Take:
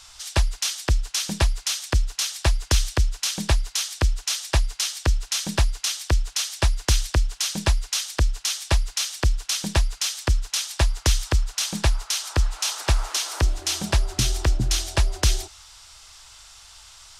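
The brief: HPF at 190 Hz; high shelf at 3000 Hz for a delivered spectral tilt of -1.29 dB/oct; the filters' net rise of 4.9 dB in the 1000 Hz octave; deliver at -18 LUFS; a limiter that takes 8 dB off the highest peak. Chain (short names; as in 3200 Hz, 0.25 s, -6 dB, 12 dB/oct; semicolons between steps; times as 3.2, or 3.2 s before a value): HPF 190 Hz; bell 1000 Hz +5 dB; high shelf 3000 Hz +8.5 dB; gain +6 dB; limiter -6 dBFS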